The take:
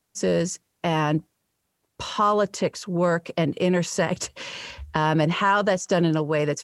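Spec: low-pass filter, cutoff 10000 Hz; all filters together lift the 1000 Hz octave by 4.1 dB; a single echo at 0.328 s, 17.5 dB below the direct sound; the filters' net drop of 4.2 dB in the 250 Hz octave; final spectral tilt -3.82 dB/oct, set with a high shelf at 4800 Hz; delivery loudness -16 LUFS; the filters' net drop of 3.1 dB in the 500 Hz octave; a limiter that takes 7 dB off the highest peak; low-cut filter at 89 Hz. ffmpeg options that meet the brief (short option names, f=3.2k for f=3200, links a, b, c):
-af "highpass=89,lowpass=10k,equalizer=f=250:t=o:g=-6,equalizer=f=500:t=o:g=-4,equalizer=f=1k:t=o:g=5.5,highshelf=f=4.8k:g=6,alimiter=limit=-12.5dB:level=0:latency=1,aecho=1:1:328:0.133,volume=9.5dB"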